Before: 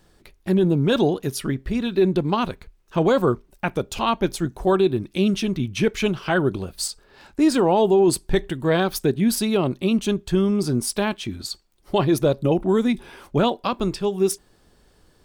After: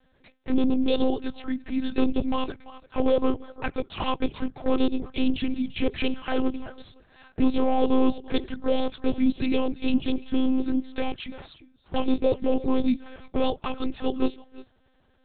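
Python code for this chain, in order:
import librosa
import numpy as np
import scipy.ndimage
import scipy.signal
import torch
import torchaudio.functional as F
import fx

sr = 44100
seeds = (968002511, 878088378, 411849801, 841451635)

y = fx.highpass(x, sr, hz=130.0, slope=6)
y = y + 10.0 ** (-18.0 / 20.0) * np.pad(y, (int(343 * sr / 1000.0), 0))[:len(y)]
y = fx.clip_asym(y, sr, top_db=-15.0, bottom_db=-14.5)
y = fx.env_flanger(y, sr, rest_ms=5.6, full_db=-18.5)
y = fx.lpc_monotone(y, sr, seeds[0], pitch_hz=260.0, order=8)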